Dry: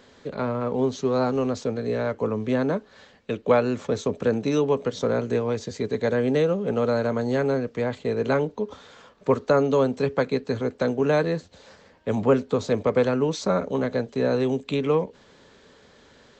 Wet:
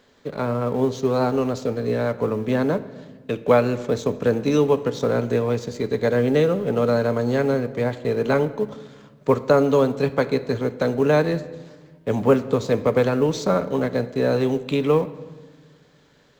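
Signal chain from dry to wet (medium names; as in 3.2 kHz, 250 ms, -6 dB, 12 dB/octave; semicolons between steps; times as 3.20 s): companding laws mixed up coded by A; simulated room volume 1100 m³, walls mixed, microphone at 0.4 m; trim +3 dB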